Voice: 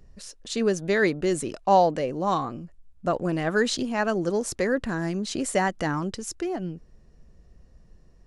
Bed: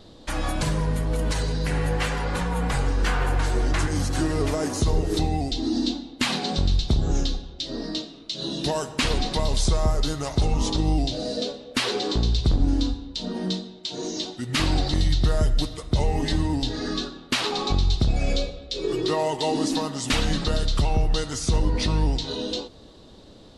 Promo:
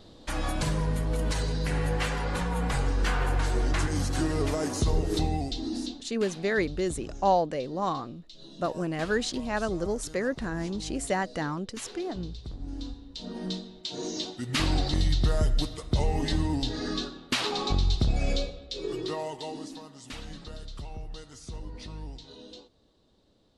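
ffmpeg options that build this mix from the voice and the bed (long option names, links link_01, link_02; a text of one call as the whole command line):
ffmpeg -i stem1.wav -i stem2.wav -filter_complex "[0:a]adelay=5550,volume=-4.5dB[link_01];[1:a]volume=12dB,afade=type=out:start_time=5.28:duration=0.9:silence=0.16788,afade=type=in:start_time=12.59:duration=1.37:silence=0.16788,afade=type=out:start_time=18.28:duration=1.47:silence=0.188365[link_02];[link_01][link_02]amix=inputs=2:normalize=0" out.wav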